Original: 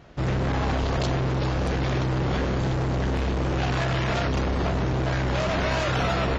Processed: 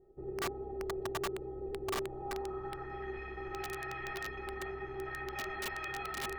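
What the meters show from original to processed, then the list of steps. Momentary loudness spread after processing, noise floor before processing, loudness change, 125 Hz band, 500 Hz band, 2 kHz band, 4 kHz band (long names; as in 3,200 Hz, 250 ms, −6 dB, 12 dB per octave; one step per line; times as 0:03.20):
4 LU, −25 dBFS, −14.5 dB, −26.0 dB, −11.0 dB, −10.5 dB, −13.5 dB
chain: brickwall limiter −23 dBFS, peak gain reduction 5 dB
low-pass filter sweep 460 Hz → 2,000 Hz, 0:01.91–0:02.98
stiff-string resonator 380 Hz, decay 0.24 s, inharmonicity 0.03
wrap-around overflow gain 34 dB
level +3 dB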